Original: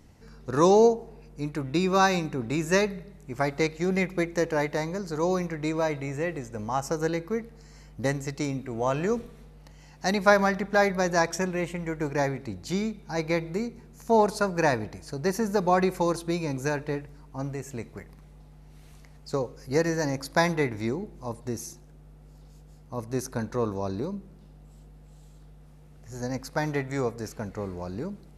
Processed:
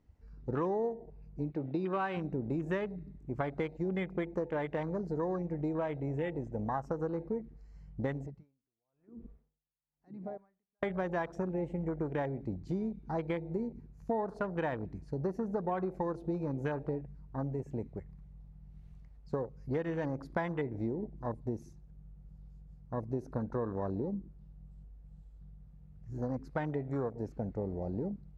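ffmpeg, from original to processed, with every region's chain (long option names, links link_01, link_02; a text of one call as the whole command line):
ffmpeg -i in.wav -filter_complex "[0:a]asettb=1/sr,asplit=3[link_01][link_02][link_03];[link_01]atrim=end=1.504[link_04];[link_02]atrim=start=1.5:end=2.17,asetpts=PTS-STARTPTS,afade=type=in:duration=0.004:curve=qsin,afade=type=out:start_time=0.666:duration=0.004:curve=qsin,lowpass=frequency=4000:width_type=q:width=1.7,lowshelf=frequency=120:gain=-11.5,asoftclip=type=hard:threshold=-12.5dB[link_05];[link_03]atrim=start=2.166[link_06];[link_04][link_05]acrossfade=duration=0.004:curve1=hsin:curve2=qsin[link_07];[link_07][link_06]acrossfade=duration=0.004:curve1=qsin:curve2=hsin,asettb=1/sr,asplit=3[link_08][link_09][link_10];[link_08]atrim=end=8.264[link_11];[link_09]atrim=start=8.26:end=10.83,asetpts=PTS-STARTPTS,afade=type=in:duration=0.004:curve=qsin,afade=type=out:start_time=2.566:duration=0.004:curve=qsin,lowpass=frequency=1200:poles=1,acompressor=threshold=-41dB:ratio=3:attack=3.2:release=140:knee=1:detection=peak,aeval=exprs='val(0)*pow(10,-36*(0.5-0.5*cos(2*PI*1*n/s))/20)':channel_layout=same[link_12];[link_10]atrim=start=10.826[link_13];[link_11][link_12]acrossfade=duration=0.004:curve1=hsin:curve2=qsin[link_14];[link_14][link_13]acrossfade=duration=0.004:curve1=qsin:curve2=hsin,lowpass=frequency=2100:poles=1,afwtdn=0.0178,acompressor=threshold=-31dB:ratio=6" out.wav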